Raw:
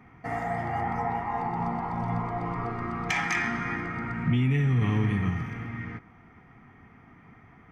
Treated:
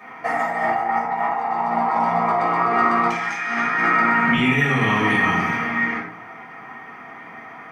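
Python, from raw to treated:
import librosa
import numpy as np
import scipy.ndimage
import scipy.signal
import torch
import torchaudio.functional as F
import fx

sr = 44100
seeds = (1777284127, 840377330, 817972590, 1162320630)

y = scipy.signal.sosfilt(scipy.signal.butter(2, 510.0, 'highpass', fs=sr, output='sos'), x)
y = fx.over_compress(y, sr, threshold_db=-37.0, ratio=-1.0)
y = fx.room_shoebox(y, sr, seeds[0], volume_m3=470.0, walls='furnished', distance_m=5.9)
y = y * 10.0 ** (7.0 / 20.0)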